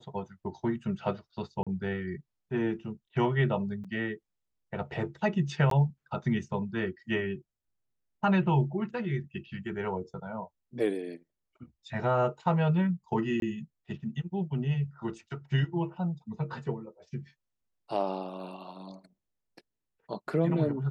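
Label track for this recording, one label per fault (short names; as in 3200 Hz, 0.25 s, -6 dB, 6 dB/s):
1.630000	1.670000	gap 36 ms
3.840000	3.850000	gap 5.8 ms
5.700000	5.710000	gap 13 ms
13.400000	13.420000	gap 22 ms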